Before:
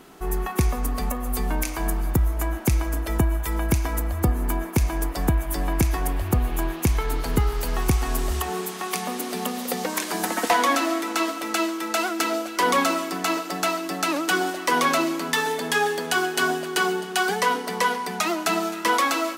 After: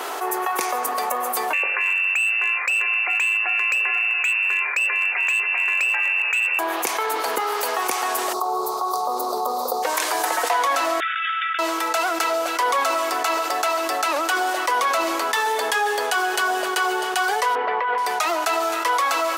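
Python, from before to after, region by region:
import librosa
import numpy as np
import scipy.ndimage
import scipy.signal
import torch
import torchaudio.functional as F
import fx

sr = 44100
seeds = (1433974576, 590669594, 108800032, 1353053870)

y = fx.chain(x, sr, fx.freq_invert(carrier_hz=2700),
    fx.clip_hard(threshold_db=-16.0), at=(1.53, 6.59))
y = fx.ellip_bandstop(y, sr, low_hz=1200.0, high_hz=4100.0, order=3, stop_db=40, at=(8.32, 9.82), fade=0.02)
y = fx.peak_eq(y, sr, hz=8700.0, db=-11.5, octaves=1.7, at=(8.32, 9.82), fade=0.02)
y = fx.dmg_crackle(y, sr, seeds[0], per_s=270.0, level_db=-46.0, at=(8.32, 9.82), fade=0.02)
y = fx.chain(y, sr, fx.brickwall_bandpass(low_hz=1300.0, high_hz=3700.0),
    fx.over_compress(threshold_db=-33.0, ratio=-1.0),
    fx.doppler_dist(depth_ms=0.21), at=(11.0, 11.59))
y = fx.chain(y, sr, fx.lowpass(hz=2600.0, slope=24),
    fx.over_compress(threshold_db=-26.0, ratio=-1.0), at=(17.55, 17.98))
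y = scipy.signal.sosfilt(scipy.signal.butter(4, 440.0, 'highpass', fs=sr, output='sos'), y)
y = fx.peak_eq(y, sr, hz=950.0, db=4.5, octaves=1.4)
y = fx.env_flatten(y, sr, amount_pct=70)
y = y * librosa.db_to_amplitude(-5.5)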